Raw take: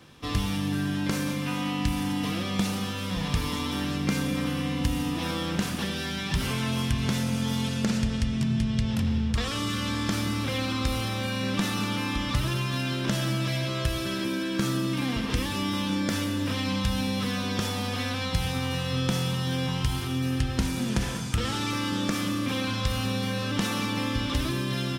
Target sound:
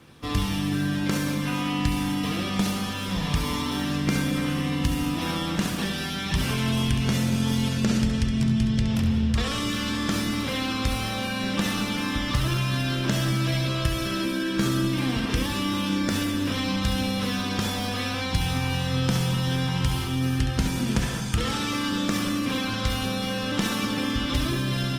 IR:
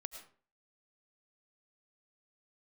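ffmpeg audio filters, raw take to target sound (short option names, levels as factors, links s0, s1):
-filter_complex "[0:a]asplit=2[s0][s1];[1:a]atrim=start_sample=2205,adelay=68[s2];[s1][s2]afir=irnorm=-1:irlink=0,volume=0.631[s3];[s0][s3]amix=inputs=2:normalize=0,volume=1.19" -ar 48000 -c:a libopus -b:a 24k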